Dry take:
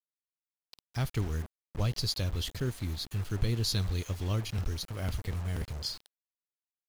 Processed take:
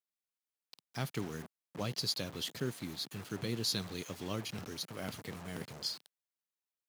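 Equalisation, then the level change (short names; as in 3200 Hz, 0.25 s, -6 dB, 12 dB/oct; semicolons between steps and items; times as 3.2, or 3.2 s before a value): HPF 150 Hz 24 dB/oct; -1.5 dB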